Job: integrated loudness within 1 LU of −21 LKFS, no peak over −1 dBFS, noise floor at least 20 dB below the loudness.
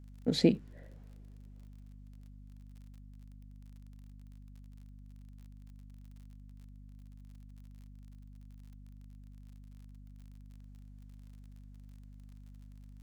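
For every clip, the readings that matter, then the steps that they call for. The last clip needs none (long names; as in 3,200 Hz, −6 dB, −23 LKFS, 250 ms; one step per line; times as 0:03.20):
crackle rate 42 per second; mains hum 50 Hz; hum harmonics up to 250 Hz; level of the hum −49 dBFS; integrated loudness −30.0 LKFS; sample peak −11.5 dBFS; target loudness −21.0 LKFS
→ click removal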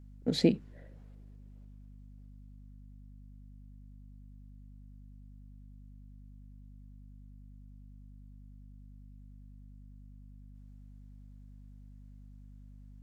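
crackle rate 0 per second; mains hum 50 Hz; hum harmonics up to 250 Hz; level of the hum −49 dBFS
→ mains-hum notches 50/100/150/200/250 Hz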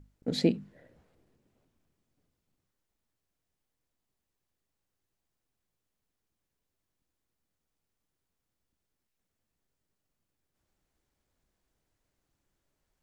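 mains hum none found; integrated loudness −30.5 LKFS; sample peak −12.5 dBFS; target loudness −21.0 LKFS
→ level +9.5 dB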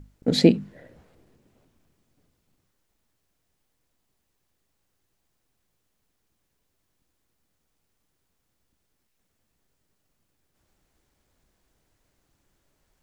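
integrated loudness −21.0 LKFS; sample peak −3.0 dBFS; background noise floor −76 dBFS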